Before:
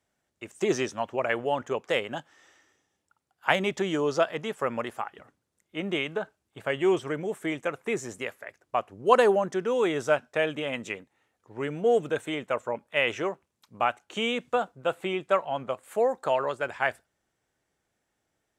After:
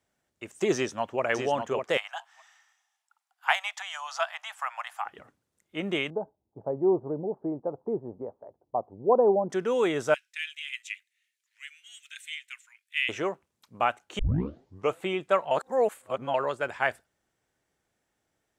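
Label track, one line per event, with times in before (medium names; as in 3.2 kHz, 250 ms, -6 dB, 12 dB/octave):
0.740000	1.230000	echo throw 600 ms, feedback 10%, level -5.5 dB
1.970000	5.060000	steep high-pass 700 Hz 72 dB/octave
6.100000	9.500000	elliptic low-pass 890 Hz, stop band 80 dB
10.140000	13.090000	steep high-pass 2 kHz
14.190000	14.190000	tape start 0.79 s
15.510000	16.340000	reverse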